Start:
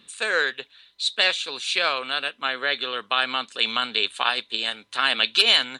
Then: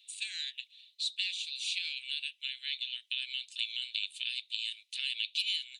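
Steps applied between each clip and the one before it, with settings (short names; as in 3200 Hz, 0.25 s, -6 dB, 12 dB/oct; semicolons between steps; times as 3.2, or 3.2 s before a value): steep high-pass 2400 Hz 48 dB/oct; compressor 3:1, threshold -28 dBFS, peak gain reduction 11.5 dB; gain -4.5 dB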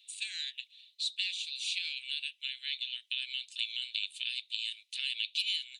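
nothing audible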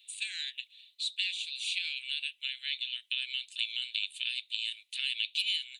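bell 5400 Hz -8.5 dB 0.84 oct; gain +4 dB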